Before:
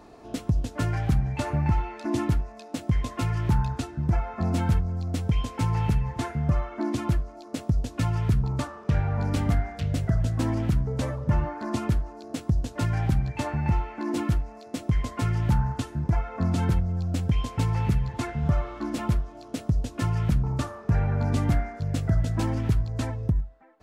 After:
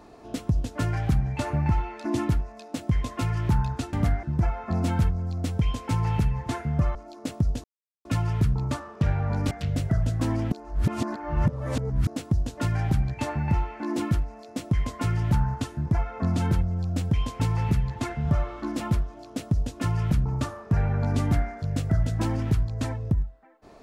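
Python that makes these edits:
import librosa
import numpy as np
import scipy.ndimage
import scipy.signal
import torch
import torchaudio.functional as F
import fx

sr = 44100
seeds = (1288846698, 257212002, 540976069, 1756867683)

y = fx.edit(x, sr, fx.cut(start_s=6.65, length_s=0.59),
    fx.insert_silence(at_s=7.93, length_s=0.41),
    fx.move(start_s=9.39, length_s=0.3, to_s=3.93),
    fx.reverse_span(start_s=10.7, length_s=1.55), tone=tone)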